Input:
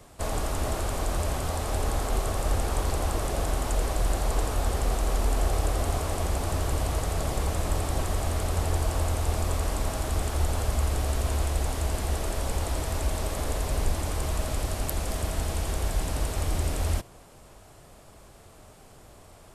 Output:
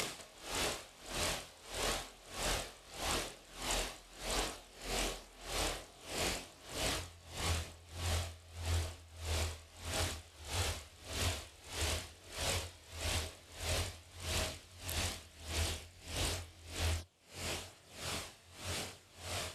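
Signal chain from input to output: upward compressor, threshold -40 dBFS; weighting filter D; chorus voices 2, 0.45 Hz, delay 23 ms, depth 1.2 ms; bell 87 Hz -6.5 dB 0.38 oct, from 6.97 s +11.5 dB; compressor 16:1, threshold -41 dBFS, peak gain reduction 19 dB; dB-linear tremolo 1.6 Hz, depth 24 dB; gain +10 dB

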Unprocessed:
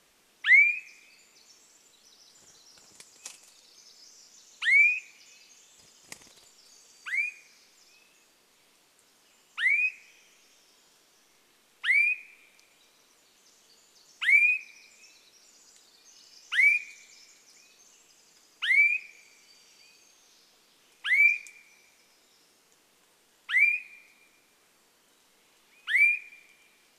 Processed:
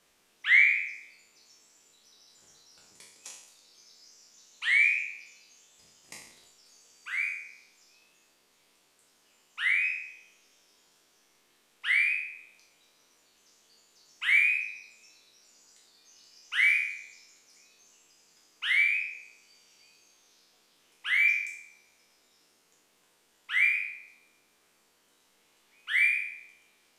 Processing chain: spectral trails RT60 0.75 s; gain -5.5 dB

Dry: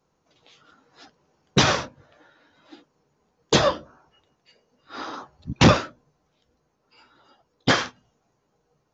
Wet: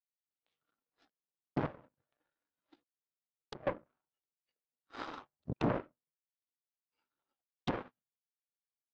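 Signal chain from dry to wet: one-sided fold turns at -19 dBFS; treble ducked by the level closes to 690 Hz, closed at -20 dBFS; HPF 110 Hz 12 dB/oct; 1.66–3.67 compressor 4:1, threshold -37 dBFS, peak gain reduction 15.5 dB; limiter -20 dBFS, peak gain reduction 9.5 dB; AGC gain up to 3.5 dB; power-law curve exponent 2; air absorption 140 m; Doppler distortion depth 0.43 ms; gain -3 dB

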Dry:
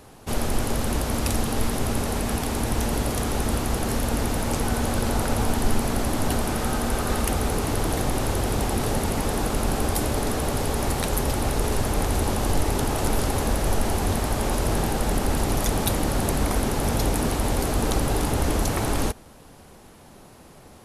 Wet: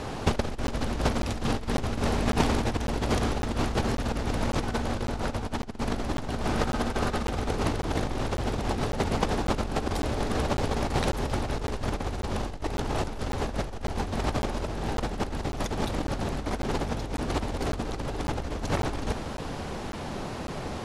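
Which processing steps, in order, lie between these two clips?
LPF 5400 Hz 12 dB/oct; negative-ratio compressor -30 dBFS, ratio -0.5; crackling interface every 0.55 s, samples 512, zero, from 0.67; gain +4.5 dB

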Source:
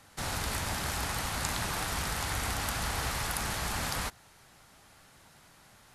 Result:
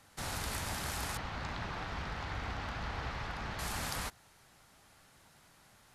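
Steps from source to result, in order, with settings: 1.17–3.59 air absorption 220 m; gain -4.5 dB

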